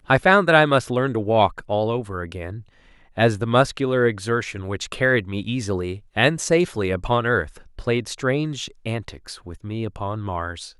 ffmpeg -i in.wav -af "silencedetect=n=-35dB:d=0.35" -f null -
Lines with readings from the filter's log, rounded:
silence_start: 2.61
silence_end: 3.17 | silence_duration: 0.56